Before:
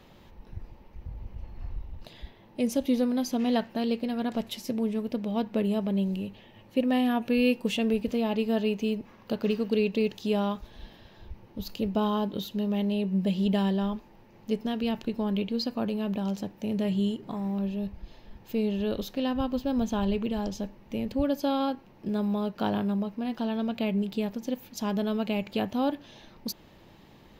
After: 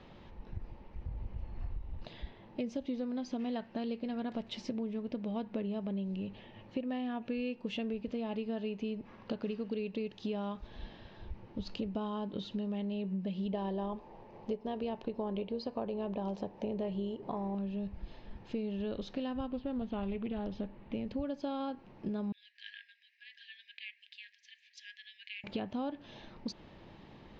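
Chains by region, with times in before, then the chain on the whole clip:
13.52–17.55 notch 1400 Hz, Q 20 + AM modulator 160 Hz, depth 15% + band shelf 650 Hz +8 dB
19.48–20.94 LPF 4100 Hz 24 dB/oct + Doppler distortion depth 0.18 ms
22.32–25.44 brick-wall FIR high-pass 1600 Hz + high shelf 2800 Hz -9 dB
whole clip: Bessel low-pass 3700 Hz, order 8; compressor 6:1, threshold -34 dBFS

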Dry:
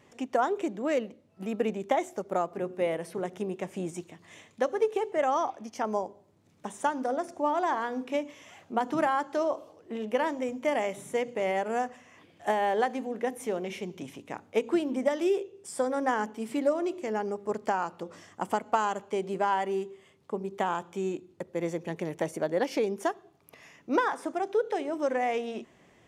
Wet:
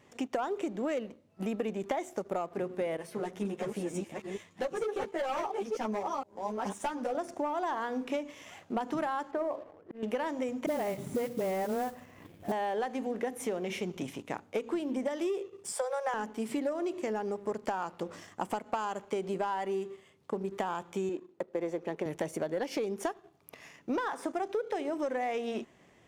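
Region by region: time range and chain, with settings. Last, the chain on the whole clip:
2.97–7.15 reverse delay 0.464 s, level -4 dB + hard clip -23.5 dBFS + ensemble effect
9.31–10.03 LPF 1500 Hz + notches 60/120/180/240/300/360/420/480/540/600 Hz + auto swell 0.285 s
10.66–12.52 tilt -3 dB/oct + dispersion highs, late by 42 ms, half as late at 430 Hz + modulation noise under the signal 19 dB
15.72–16.14 Chebyshev high-pass 410 Hz, order 10 + notch 1900 Hz, Q 19
21.09–22.06 HPF 400 Hz + tilt -3 dB/oct
whole clip: sample leveller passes 1; compressor, threshold -30 dBFS

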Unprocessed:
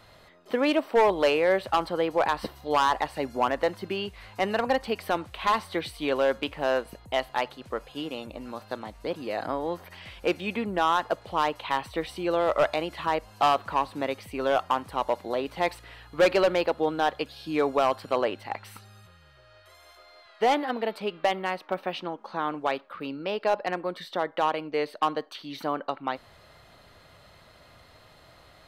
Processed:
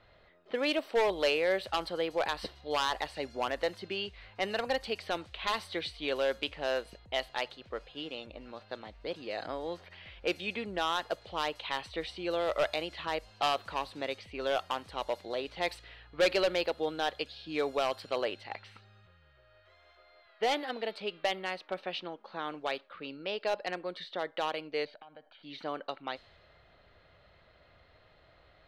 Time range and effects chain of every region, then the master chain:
24.85–25.43 comb 1.3 ms, depth 72% + compressor 10:1, threshold -39 dBFS + air absorption 270 m
whole clip: low-pass opened by the level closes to 1900 Hz, open at -22 dBFS; ten-band EQ 125 Hz -5 dB, 250 Hz -6 dB, 1000 Hz -7 dB, 4000 Hz +5 dB; gain -3.5 dB

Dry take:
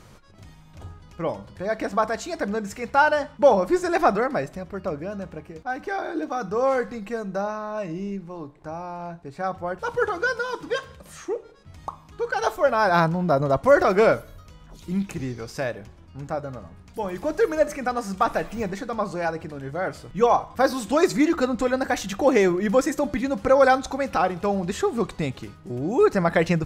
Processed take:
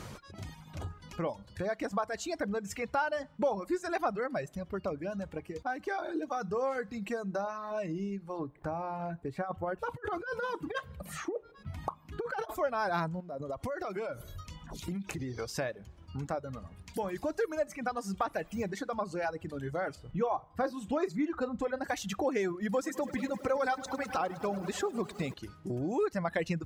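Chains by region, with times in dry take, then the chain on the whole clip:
8.39–12.55 bell 6300 Hz -10 dB 1.8 oct + negative-ratio compressor -28 dBFS, ratio -0.5
13.2–15.39 de-hum 184.3 Hz, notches 2 + compressor 10:1, threshold -30 dBFS
19.95–21.84 high shelf 2900 Hz -12 dB + doubler 37 ms -12 dB
22.62–25.34 HPF 110 Hz 6 dB/oct + lo-fi delay 0.103 s, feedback 80%, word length 8-bit, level -10 dB
whole clip: HPF 47 Hz; reverb removal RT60 1.2 s; compressor 2.5:1, threshold -43 dBFS; gain +5.5 dB

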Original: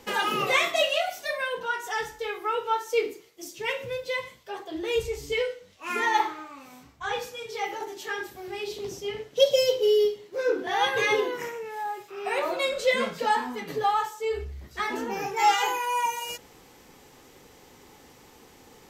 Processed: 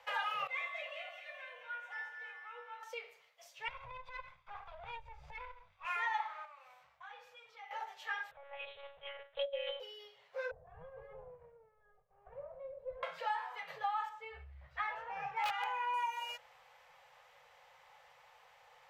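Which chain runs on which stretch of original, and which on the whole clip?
0.47–2.83 bell 2300 Hz +7 dB 0.39 oct + resonator 160 Hz, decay 0.57 s, harmonics odd, mix 90% + echo with dull and thin repeats by turns 0.107 s, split 1400 Hz, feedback 76%, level -5 dB
3.68–5.85 minimum comb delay 0.83 ms + RIAA curve playback + compressor 4:1, threshold -28 dBFS
6.45–7.71 compressor 2.5:1, threshold -48 dBFS + core saturation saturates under 950 Hz
8.31–9.8 monotone LPC vocoder at 8 kHz 280 Hz + mismatched tape noise reduction decoder only
10.51–13.03 minimum comb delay 1.8 ms + synth low-pass 270 Hz, resonance Q 2.3 + bell 63 Hz +5 dB 2.1 oct
14.09–15.94 self-modulated delay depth 0.059 ms + tone controls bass +13 dB, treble -11 dB + wrapped overs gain 13.5 dB
whole clip: compressor 6:1, threshold -27 dBFS; Chebyshev band-stop 160–540 Hz, order 3; three-band isolator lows -19 dB, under 450 Hz, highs -18 dB, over 3300 Hz; gain -4 dB

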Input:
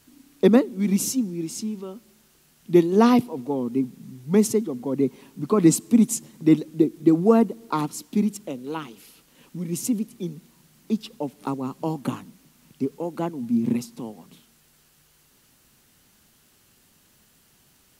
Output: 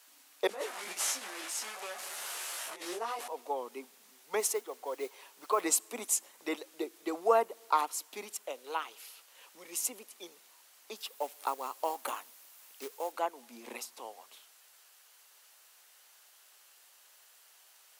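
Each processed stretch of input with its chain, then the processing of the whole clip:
0.47–3.28 delta modulation 64 kbps, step -30 dBFS + negative-ratio compressor -22 dBFS + detuned doubles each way 12 cents
4.4–5.61 bell 230 Hz -10 dB 0.34 oct + modulation noise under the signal 32 dB
10.96–13.12 high shelf 11000 Hz +10 dB + companded quantiser 6-bit
whole clip: HPF 590 Hz 24 dB/oct; dynamic EQ 4800 Hz, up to -4 dB, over -46 dBFS, Q 0.85

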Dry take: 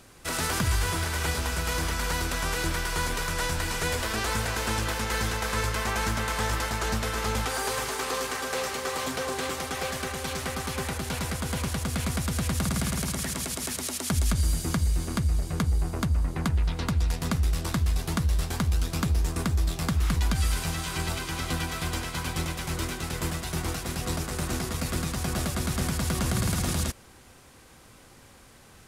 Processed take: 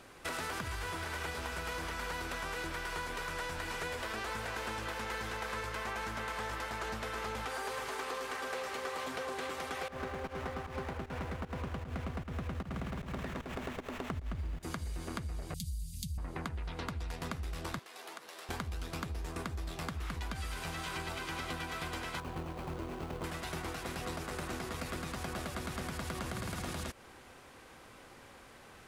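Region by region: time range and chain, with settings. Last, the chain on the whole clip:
9.88–14.63 tilt -1.5 dB/oct + pump 153 bpm, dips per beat 1, -16 dB, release 0.194 s + running maximum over 9 samples
15.54–16.18 inverse Chebyshev band-stop 510–1100 Hz, stop band 80 dB + high shelf 7300 Hz +11.5 dB + comb 4.6 ms, depth 52%
17.79–18.49 Bessel high-pass 500 Hz, order 4 + compressor, threshold -42 dBFS
22.2–23.24 median filter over 25 samples + high shelf 4800 Hz +7.5 dB
whole clip: tone controls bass -8 dB, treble -9 dB; compressor, threshold -37 dBFS; gain +1 dB

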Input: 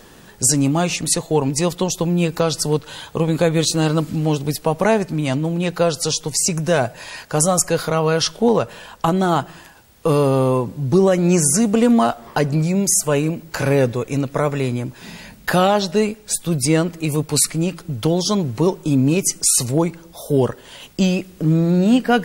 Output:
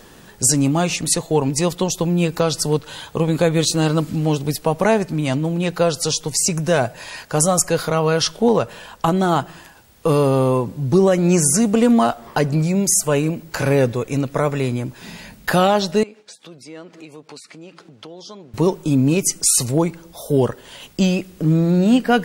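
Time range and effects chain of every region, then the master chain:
16.03–18.54 expander -41 dBFS + compressor 4:1, threshold -34 dBFS + BPF 290–5100 Hz
whole clip: dry

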